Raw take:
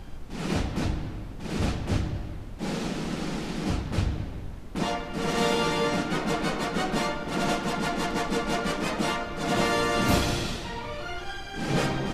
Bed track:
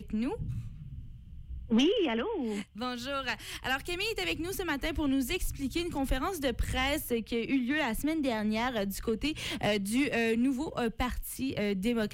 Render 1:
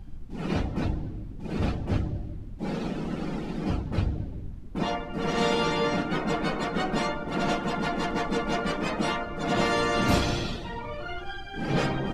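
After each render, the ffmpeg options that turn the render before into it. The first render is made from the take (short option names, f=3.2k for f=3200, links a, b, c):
-af "afftdn=nr=13:nf=-38"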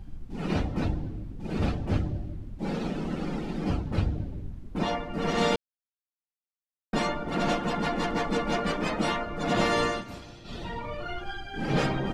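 -filter_complex "[0:a]asplit=5[a][b][c][d][e];[a]atrim=end=5.56,asetpts=PTS-STARTPTS,afade=t=out:st=5.556:d=0.004:c=hsin[f];[b]atrim=start=5.56:end=6.93,asetpts=PTS-STARTPTS,volume=0[g];[c]atrim=start=6.93:end=10.04,asetpts=PTS-STARTPTS,afade=t=in:d=0.004:c=hsin,afade=t=out:st=2.92:d=0.19:silence=0.112202[h];[d]atrim=start=10.04:end=10.44,asetpts=PTS-STARTPTS,volume=-19dB[i];[e]atrim=start=10.44,asetpts=PTS-STARTPTS,afade=t=in:d=0.19:silence=0.112202[j];[f][g][h][i][j]concat=n=5:v=0:a=1"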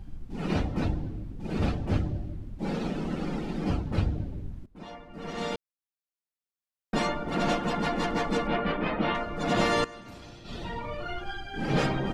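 -filter_complex "[0:a]asettb=1/sr,asplit=3[a][b][c];[a]atrim=end=8.474[d];[b]atrim=start=8.47:end=9.15,asetpts=PTS-STARTPTS,afade=t=in:d=0.004:c=qsin,afade=t=out:st=0.676:d=0.004:c=qsin,lowpass=f=3.3k:w=0.5412,lowpass=f=3.3k:w=1.3066[e];[c]atrim=start=9.146[f];[d][e]acrossfade=d=0.004:c1=hsin:c2=qsin[g];[g][f]acrossfade=d=0.004:c1=qsin:c2=hsin,asettb=1/sr,asplit=3[h][i][j];[h]atrim=end=9.844[k];[i]atrim=start=9.84:end=10.38,asetpts=PTS-STARTPTS,afade=t=in:d=0.004:c=qsin,afade=t=out:st=0.536:d=0.004:c=qsin,acompressor=threshold=-40dB:ratio=8:attack=3.2:release=140:knee=1:detection=peak[l];[j]atrim=start=10.376[m];[k][l]acrossfade=d=0.004:c1=hsin:c2=qsin[n];[n][m]acrossfade=d=0.004:c1=qsin:c2=hsin,asplit=2[o][p];[o]atrim=end=4.66,asetpts=PTS-STARTPTS,afade=t=out:st=4.656:d=0.004:c=hsin:silence=0.1[q];[p]atrim=start=4.66,asetpts=PTS-STARTPTS,afade=t=in:d=2.35:silence=0.1[r];[q][r]concat=n=2:v=0:a=1"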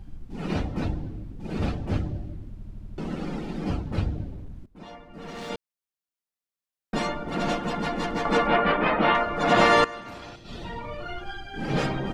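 -filter_complex "[0:a]asettb=1/sr,asplit=3[a][b][c];[a]atrim=end=4.344[d];[b]atrim=start=4.34:end=5.5,asetpts=PTS-STARTPTS,afade=t=in:d=0.004:c=qsin,afade=t=out:st=1.156:d=0.004:c=qsin,asoftclip=type=hard:threshold=-34dB[e];[c]atrim=start=5.496[f];[d][e]acrossfade=d=0.004:c1=hsin:c2=qsin[g];[g][f]acrossfade=d=0.004:c1=qsin:c2=hsin,asettb=1/sr,asplit=3[h][i][j];[h]atrim=end=8.254[k];[i]atrim=start=8.25:end=10.36,asetpts=PTS-STARTPTS,afade=t=in:d=0.004:c=qsin,afade=t=out:st=2.106:d=0.004:c=qsin,equalizer=f=1.2k:w=0.35:g=9.5[l];[j]atrim=start=10.356[m];[k][l]acrossfade=d=0.004:c1=hsin:c2=qsin[n];[n][m]acrossfade=d=0.004:c1=qsin:c2=hsin,asplit=7[o][p][q][r][s][t][u];[o]atrim=end=2.582[v];[p]atrim=start=2.498:end=2.582[w];[q]atrim=start=2.498:end=2.582[x];[r]atrim=start=2.498:end=2.582[y];[s]atrim=start=2.498:end=2.582[z];[t]atrim=start=2.498:end=2.582[aa];[u]atrim=start=2.978[ab];[v][w]acrossfade=d=0.004:c1=hsin:c2=hsin[ac];[ac][x]acrossfade=d=0.004:c1=hsin:c2=hsin[ad];[ad][y]acrossfade=d=0.004:c1=hsin:c2=hsin[ae];[ae][z]acrossfade=d=0.004:c1=hsin:c2=hsin[af];[af][aa]acrossfade=d=0.004:c1=hsin:c2=hsin[ag];[ag][ab]acrossfade=d=0.004:c1=hsin:c2=hsin"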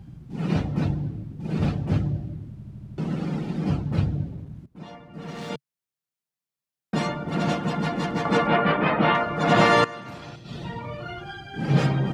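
-af "highpass=75,equalizer=f=140:w=1.8:g=11"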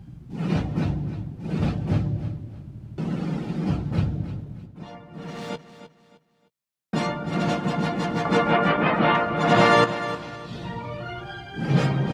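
-filter_complex "[0:a]asplit=2[a][b];[b]adelay=17,volume=-13dB[c];[a][c]amix=inputs=2:normalize=0,aecho=1:1:308|616|924:0.237|0.0735|0.0228"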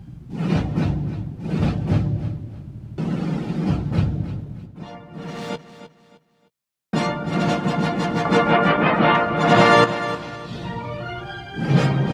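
-af "volume=3.5dB,alimiter=limit=-1dB:level=0:latency=1"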